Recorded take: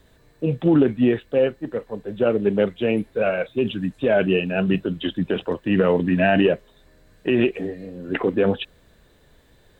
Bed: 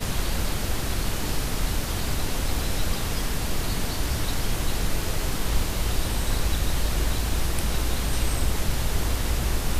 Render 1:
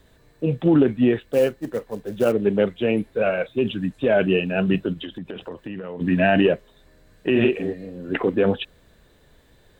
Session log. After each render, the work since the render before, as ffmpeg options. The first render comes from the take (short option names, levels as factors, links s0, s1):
-filter_complex "[0:a]asplit=3[s0][s1][s2];[s0]afade=t=out:st=1.27:d=0.02[s3];[s1]acrusher=bits=6:mode=log:mix=0:aa=0.000001,afade=t=in:st=1.27:d=0.02,afade=t=out:st=2.31:d=0.02[s4];[s2]afade=t=in:st=2.31:d=0.02[s5];[s3][s4][s5]amix=inputs=3:normalize=0,asplit=3[s6][s7][s8];[s6]afade=t=out:st=4.93:d=0.02[s9];[s7]acompressor=threshold=0.0355:ratio=10:attack=3.2:release=140:knee=1:detection=peak,afade=t=in:st=4.93:d=0.02,afade=t=out:st=6:d=0.02[s10];[s8]afade=t=in:st=6:d=0.02[s11];[s9][s10][s11]amix=inputs=3:normalize=0,asettb=1/sr,asplit=3[s12][s13][s14];[s12]atrim=end=7.314[s15];[s13]atrim=start=7.31:end=7.73,asetpts=PTS-STARTPTS,afade=t=in:d=0.004:c=qsin,afade=t=out:st=0.416:d=0.004:c=qsin,asplit=2[s16][s17];[s17]adelay=44,volume=0.631[s18];[s16][s18]amix=inputs=2:normalize=0,atrim=end_sample=18522[s19];[s14]atrim=start=7.726[s20];[s15][s19]acrossfade=d=0.004:c1=hsin:c2=qsin[s21];[s21][s20]acrossfade=d=0.004:c1=qsin:c2=hsin"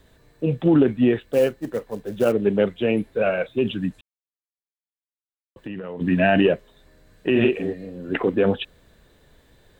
-filter_complex "[0:a]asplit=3[s0][s1][s2];[s0]atrim=end=4.01,asetpts=PTS-STARTPTS,afade=t=out:st=4.006:d=0.004:c=hsin[s3];[s1]atrim=start=4.01:end=5.56,asetpts=PTS-STARTPTS,volume=0[s4];[s2]atrim=start=5.56,asetpts=PTS-STARTPTS,afade=t=in:d=0.004:c=hsin[s5];[s3][s4][s5]concat=n=3:v=0:a=1"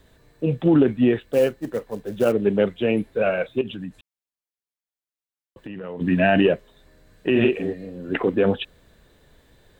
-filter_complex "[0:a]asettb=1/sr,asplit=3[s0][s1][s2];[s0]atrim=end=3.614[s3];[s1]atrim=start=3.61:end=5.81,asetpts=PTS-STARTPTS,afade=t=in:d=0.004:c=qsin,afade=t=out:st=2.196:d=0.004:c=qsin,acompressor=threshold=0.0282:ratio=3:attack=3.2:release=140:knee=1:detection=peak[s4];[s2]atrim=start=5.806[s5];[s3][s4]acrossfade=d=0.004:c1=hsin:c2=qsin[s6];[s6][s5]acrossfade=d=0.004:c1=qsin:c2=hsin"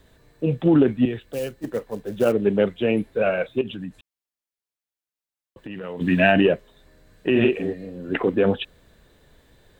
-filter_complex "[0:a]asettb=1/sr,asplit=3[s0][s1][s2];[s0]atrim=end=1.054[s3];[s1]atrim=start=1.05:end=1.64,asetpts=PTS-STARTPTS,afade=t=in:d=0.004:c=qsin,afade=t=out:st=0.586:d=0.004:c=qsin,acrossover=split=140|3000[s4][s5][s6];[s5]acompressor=threshold=0.00708:ratio=1.5:attack=3.2:release=140:knee=2.83:detection=peak[s7];[s4][s7][s6]amix=inputs=3:normalize=0[s8];[s2]atrim=start=1.636[s9];[s3][s8]acrossfade=d=0.004:c1=hsin:c2=qsin[s10];[s10][s9]acrossfade=d=0.004:c1=qsin:c2=hsin,asplit=3[s11][s12][s13];[s11]afade=t=out:st=5.7:d=0.02[s14];[s12]highshelf=f=2200:g=9,afade=t=in:st=5.7:d=0.02,afade=t=out:st=6.31:d=0.02[s15];[s13]afade=t=in:st=6.31:d=0.02[s16];[s14][s15][s16]amix=inputs=3:normalize=0"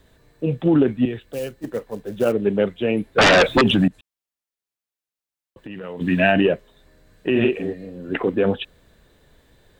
-filter_complex "[0:a]asettb=1/sr,asplit=3[s0][s1][s2];[s0]atrim=end=3.184[s3];[s1]atrim=start=3.18:end=3.88,asetpts=PTS-STARTPTS,afade=t=in:d=0.004:c=qsin,afade=t=out:st=0.696:d=0.004:c=qsin,aeval=exprs='0.335*sin(PI/2*5.01*val(0)/0.335)':c=same[s4];[s2]atrim=start=3.876[s5];[s3][s4]acrossfade=d=0.004:c1=hsin:c2=qsin[s6];[s6][s5]acrossfade=d=0.004:c1=qsin:c2=hsin"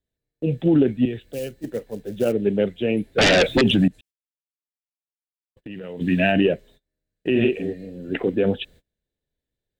-af "agate=range=0.0355:threshold=0.00501:ratio=16:detection=peak,equalizer=f=1100:t=o:w=0.88:g=-12.5"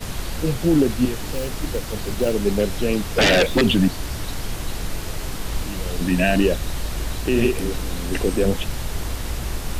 -filter_complex "[1:a]volume=0.794[s0];[0:a][s0]amix=inputs=2:normalize=0"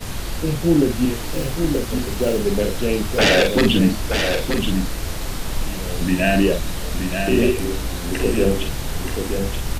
-filter_complex "[0:a]asplit=2[s0][s1];[s1]adelay=47,volume=0.501[s2];[s0][s2]amix=inputs=2:normalize=0,asplit=2[s3][s4];[s4]aecho=0:1:928:0.501[s5];[s3][s5]amix=inputs=2:normalize=0"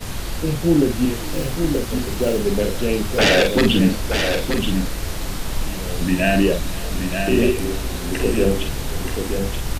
-af "aecho=1:1:521:0.0891"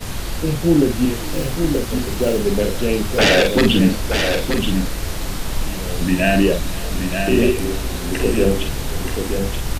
-af "volume=1.19,alimiter=limit=0.708:level=0:latency=1"